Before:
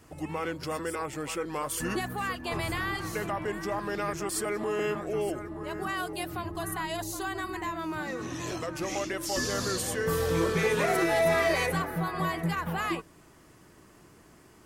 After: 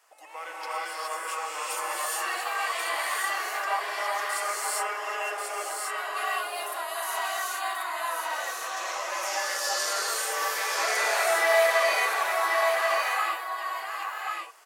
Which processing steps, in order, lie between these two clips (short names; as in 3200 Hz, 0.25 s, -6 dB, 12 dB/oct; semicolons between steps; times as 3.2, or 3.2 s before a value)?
inverse Chebyshev high-pass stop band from 190 Hz, stop band 60 dB; echo 1.086 s -4 dB; non-linear reverb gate 0.44 s rising, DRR -7 dB; gain -3.5 dB